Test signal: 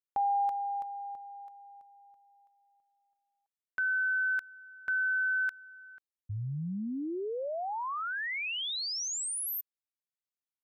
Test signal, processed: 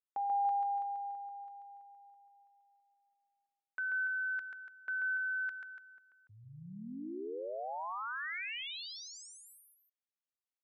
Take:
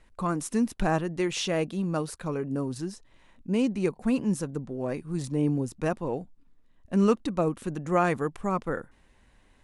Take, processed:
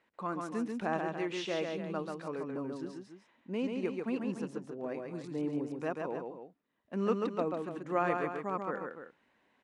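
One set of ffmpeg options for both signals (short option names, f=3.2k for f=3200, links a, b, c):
-af "crystalizer=i=2:c=0,highpass=250,lowpass=2.5k,aecho=1:1:137|288.6:0.631|0.316,volume=-7dB"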